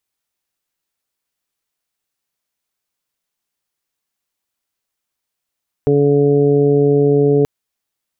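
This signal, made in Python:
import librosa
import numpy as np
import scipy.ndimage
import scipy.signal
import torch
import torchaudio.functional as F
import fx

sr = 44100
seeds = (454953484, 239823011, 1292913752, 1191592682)

y = fx.additive_steady(sr, length_s=1.58, hz=143.0, level_db=-16.0, upper_db=(-1, 4.5, -11.5, -15.0))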